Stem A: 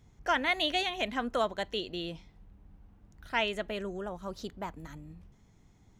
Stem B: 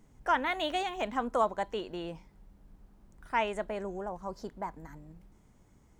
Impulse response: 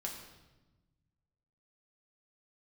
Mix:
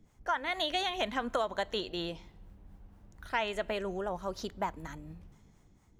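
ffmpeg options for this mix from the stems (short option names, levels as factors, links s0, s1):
-filter_complex "[0:a]dynaudnorm=f=110:g=11:m=3.55,volume=0.335,asplit=2[s0][s1];[s1]volume=0.0944[s2];[1:a]acrossover=split=540[s3][s4];[s3]aeval=exprs='val(0)*(1-1/2+1/2*cos(2*PI*4.2*n/s))':c=same[s5];[s4]aeval=exprs='val(0)*(1-1/2-1/2*cos(2*PI*4.2*n/s))':c=same[s6];[s5][s6]amix=inputs=2:normalize=0,volume=-1,volume=1.06[s7];[2:a]atrim=start_sample=2205[s8];[s2][s8]afir=irnorm=-1:irlink=0[s9];[s0][s7][s9]amix=inputs=3:normalize=0,acompressor=threshold=0.0447:ratio=6"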